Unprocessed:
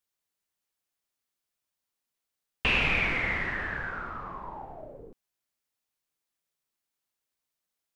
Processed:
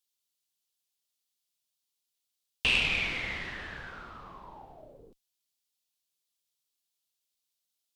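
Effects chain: resonant high shelf 2500 Hz +9.5 dB, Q 1.5; added harmonics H 3 -18 dB, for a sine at -7 dBFS; gain -3 dB

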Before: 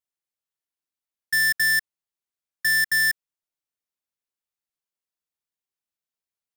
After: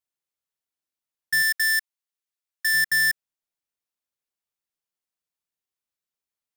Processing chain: 1.42–2.74 HPF 1200 Hz 6 dB/oct

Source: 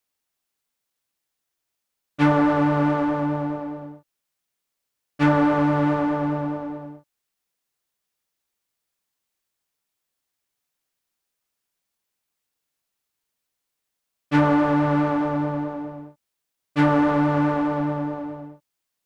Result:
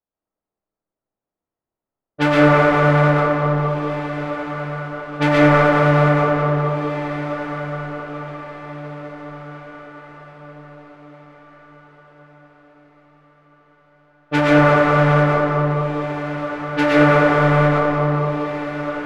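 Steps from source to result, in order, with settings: low-pass opened by the level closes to 610 Hz, open at -17.5 dBFS; formant shift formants +5 st; diffused feedback echo 1.681 s, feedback 42%, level -11.5 dB; digital reverb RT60 1.5 s, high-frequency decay 0.25×, pre-delay 80 ms, DRR -4.5 dB

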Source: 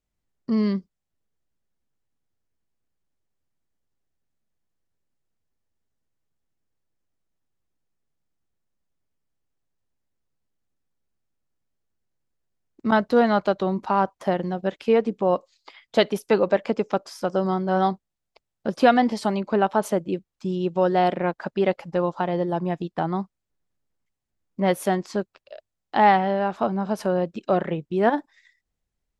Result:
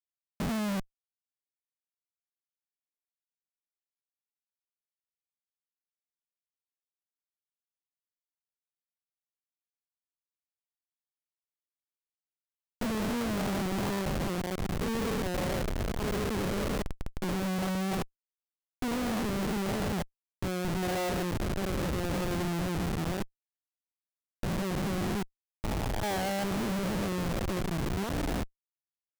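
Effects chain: stepped spectrum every 0.4 s; Schmitt trigger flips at -28.5 dBFS

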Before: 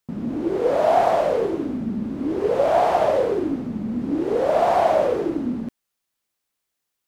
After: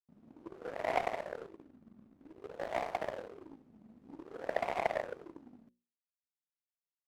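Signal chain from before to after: notches 60/120/180/240/300/360/420/480/540 Hz; 1.49–3.39 backlash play -28 dBFS; added harmonics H 3 -10 dB, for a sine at -6 dBFS; gain -8.5 dB

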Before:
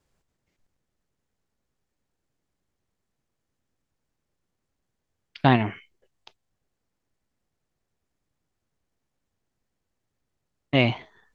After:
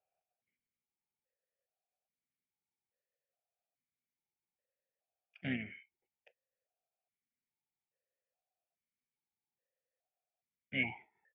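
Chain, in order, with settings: harmoniser -5 st -10 dB, +3 st -16 dB; fixed phaser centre 1100 Hz, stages 6; vowel sequencer 2.4 Hz; gain +1 dB

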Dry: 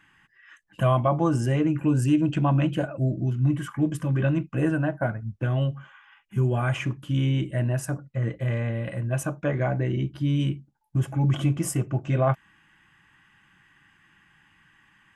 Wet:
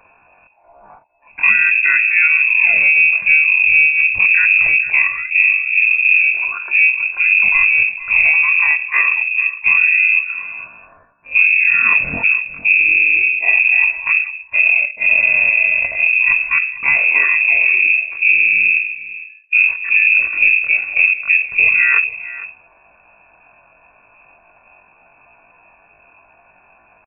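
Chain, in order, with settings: octaver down 2 oct, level +2 dB; bell 87 Hz +10.5 dB 0.4 oct; compressor 10:1, threshold -18 dBFS, peak gain reduction 9 dB; tempo 0.56×; on a send: echo 0.455 s -16 dB; on the sum: inverted band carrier 2600 Hz; gain +8.5 dB

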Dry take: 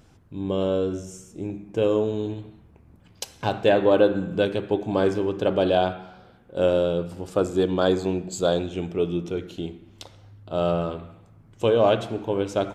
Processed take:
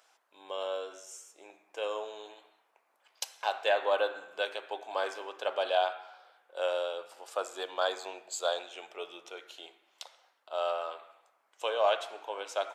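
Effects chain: HPF 660 Hz 24 dB/oct; gain -3 dB

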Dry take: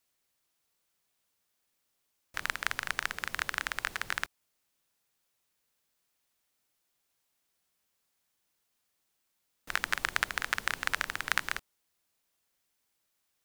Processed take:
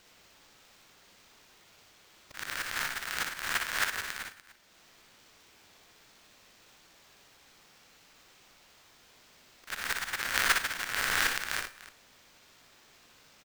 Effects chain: spectral dilation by 60 ms; high shelf 3500 Hz +8.5 dB; in parallel at +0.5 dB: limiter -8.5 dBFS, peak gain reduction 10.5 dB; on the sum: auto swell 0.594 s; sample-rate reducer 11000 Hz, jitter 20%; on a send: tapped delay 60/294 ms -5/-16.5 dB; on the sum: Schroeder reverb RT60 0.54 s, combs from 28 ms, DRR 13 dB

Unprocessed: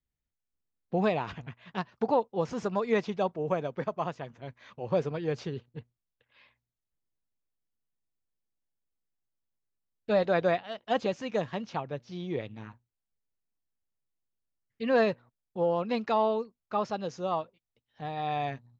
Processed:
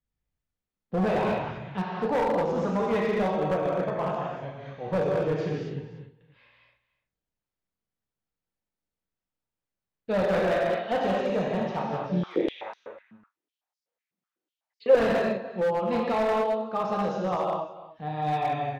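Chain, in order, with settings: high shelf 3800 Hz -11 dB; doubler 40 ms -13 dB; echo 0.296 s -16.5 dB; non-linear reverb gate 0.29 s flat, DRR -4 dB; hard clip -21 dBFS, distortion -11 dB; 12.11–14.95 stepped high-pass 8 Hz 200–5000 Hz

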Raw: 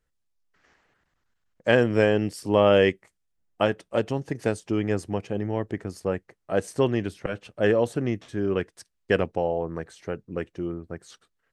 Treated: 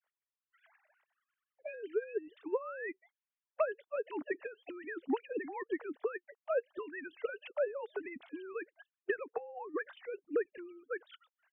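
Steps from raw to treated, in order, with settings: sine-wave speech; compressor 12:1, threshold -32 dBFS, peak gain reduction 19 dB; harmonic-percussive split harmonic -18 dB; gain +5 dB

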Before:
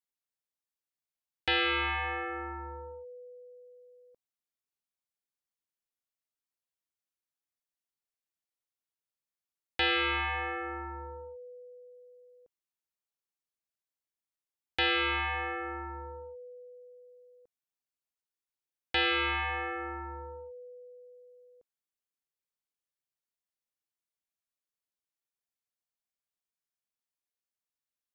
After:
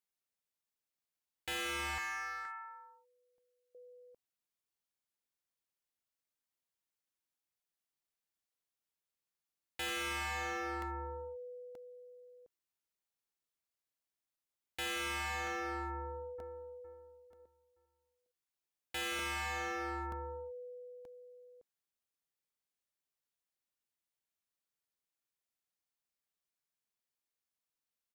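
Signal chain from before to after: 1.98–3.75 HPF 1100 Hz 24 dB/oct; hard clip -37.5 dBFS, distortion -5 dB; 15.92–16.47 echo throw 0.46 s, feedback 35%, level -11.5 dB; crackling interface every 0.93 s, samples 64, repeat, from 0.59

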